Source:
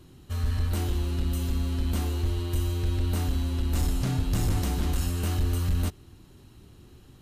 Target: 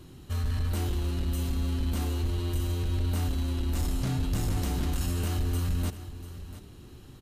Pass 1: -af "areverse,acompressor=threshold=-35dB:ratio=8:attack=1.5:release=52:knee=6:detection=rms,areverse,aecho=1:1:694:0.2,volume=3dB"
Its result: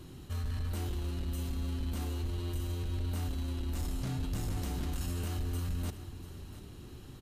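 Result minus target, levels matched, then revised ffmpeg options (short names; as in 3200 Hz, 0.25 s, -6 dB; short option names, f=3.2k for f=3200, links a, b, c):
compressor: peak gain reduction +6.5 dB
-af "areverse,acompressor=threshold=-27.5dB:ratio=8:attack=1.5:release=52:knee=6:detection=rms,areverse,aecho=1:1:694:0.2,volume=3dB"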